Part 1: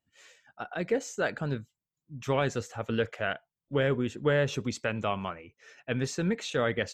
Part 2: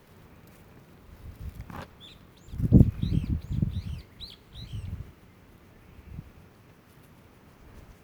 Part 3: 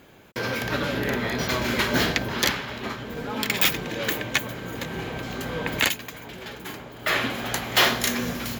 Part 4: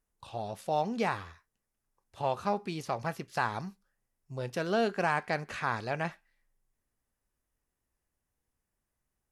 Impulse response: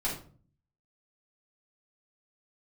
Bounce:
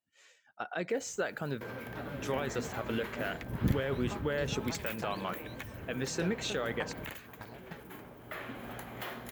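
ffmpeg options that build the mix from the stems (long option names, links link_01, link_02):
-filter_complex "[0:a]agate=range=-6dB:threshold=-49dB:ratio=16:detection=peak,highpass=frequency=250:poles=1,alimiter=limit=-23.5dB:level=0:latency=1:release=137,volume=0.5dB[link_01];[1:a]aemphasis=mode=production:type=50kf,adelay=900,volume=-13dB[link_02];[2:a]acompressor=threshold=-29dB:ratio=2.5,equalizer=frequency=5200:width=0.7:gain=-15,adelay=1250,volume=-9.5dB[link_03];[3:a]acompressor=threshold=-37dB:ratio=1.5,aeval=exprs='val(0)*pow(10,-34*if(lt(mod(3.3*n/s,1),2*abs(3.3)/1000),1-mod(3.3*n/s,1)/(2*abs(3.3)/1000),(mod(3.3*n/s,1)-2*abs(3.3)/1000)/(1-2*abs(3.3)/1000))/20)':channel_layout=same,adelay=1650,volume=-2.5dB[link_04];[link_01][link_02][link_03][link_04]amix=inputs=4:normalize=0"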